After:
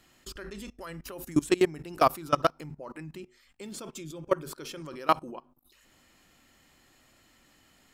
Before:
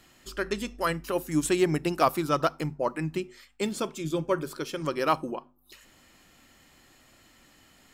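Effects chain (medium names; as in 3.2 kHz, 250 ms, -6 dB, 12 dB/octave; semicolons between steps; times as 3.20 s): level held to a coarse grid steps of 22 dB; trim +3.5 dB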